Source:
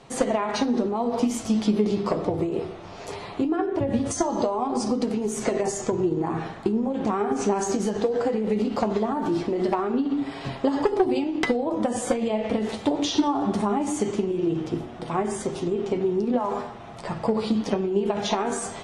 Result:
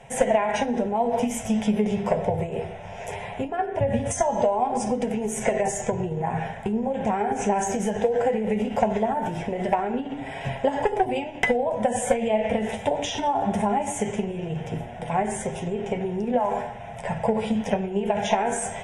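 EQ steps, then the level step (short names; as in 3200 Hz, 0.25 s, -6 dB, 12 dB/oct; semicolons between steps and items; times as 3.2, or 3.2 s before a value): fixed phaser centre 1200 Hz, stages 6; +5.5 dB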